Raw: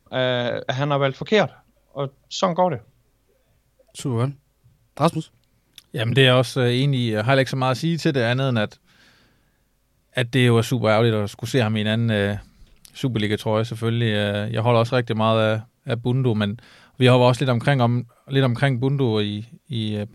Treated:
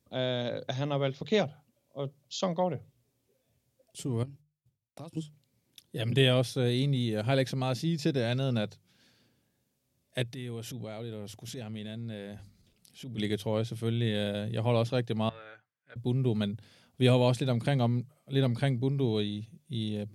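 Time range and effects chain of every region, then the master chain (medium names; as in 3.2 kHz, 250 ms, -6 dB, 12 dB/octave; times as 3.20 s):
4.23–5.17 s: expander -48 dBFS + compression 12:1, threshold -30 dBFS
10.23–13.18 s: compression, threshold -27 dBFS + transient shaper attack -6 dB, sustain 0 dB
15.29–15.96 s: de-esser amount 85% + band-pass filter 1.6 kHz, Q 3.9 + comb 6.7 ms, depth 48%
whole clip: high-pass 77 Hz; peaking EQ 1.3 kHz -9.5 dB 1.6 oct; hum notches 50/100/150 Hz; trim -7 dB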